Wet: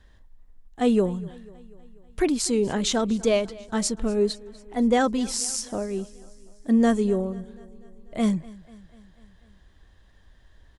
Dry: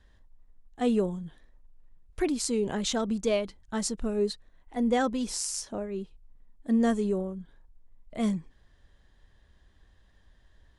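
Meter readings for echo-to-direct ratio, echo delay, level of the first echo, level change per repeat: -19.5 dB, 245 ms, -21.5 dB, -4.5 dB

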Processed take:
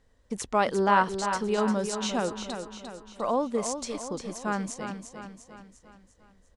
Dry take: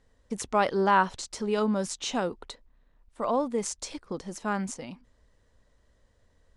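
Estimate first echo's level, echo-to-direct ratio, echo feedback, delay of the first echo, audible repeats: -8.0 dB, -7.0 dB, 50%, 349 ms, 5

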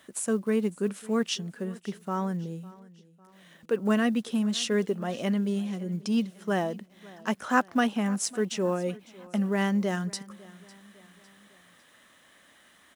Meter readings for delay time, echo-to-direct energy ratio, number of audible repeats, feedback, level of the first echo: 553 ms, -20.5 dB, 3, 47%, -21.5 dB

